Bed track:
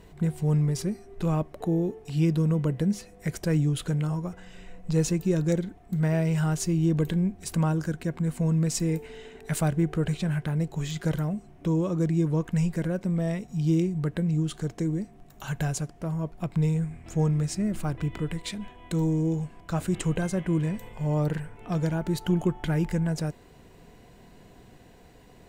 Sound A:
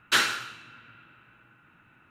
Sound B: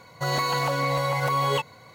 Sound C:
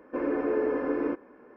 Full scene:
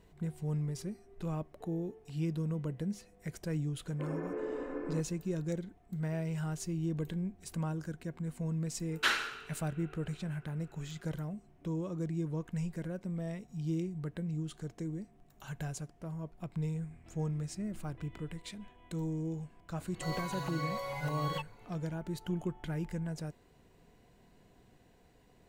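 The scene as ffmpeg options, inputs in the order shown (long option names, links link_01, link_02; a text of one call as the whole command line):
ffmpeg -i bed.wav -i cue0.wav -i cue1.wav -i cue2.wav -filter_complex "[0:a]volume=-11dB[link_01];[1:a]bass=frequency=250:gain=-7,treble=frequency=4000:gain=-6[link_02];[2:a]asplit=2[link_03][link_04];[link_04]adelay=4.3,afreqshift=1.5[link_05];[link_03][link_05]amix=inputs=2:normalize=1[link_06];[3:a]atrim=end=1.56,asetpts=PTS-STARTPTS,volume=-11dB,afade=type=in:duration=0.004:curve=hsin,afade=type=out:start_time=1.556:duration=0.004:curve=hsin,adelay=3860[link_07];[link_02]atrim=end=2.1,asetpts=PTS-STARTPTS,volume=-6dB,afade=type=in:duration=0.004:curve=hsin,afade=type=out:start_time=2.096:duration=0.004:curve=hsin,adelay=8910[link_08];[link_06]atrim=end=1.94,asetpts=PTS-STARTPTS,volume=-11dB,afade=type=in:duration=0.004:curve=hsin,afade=type=out:start_time=1.936:duration=0.004:curve=hsin,adelay=19800[link_09];[link_01][link_07][link_08][link_09]amix=inputs=4:normalize=0" out.wav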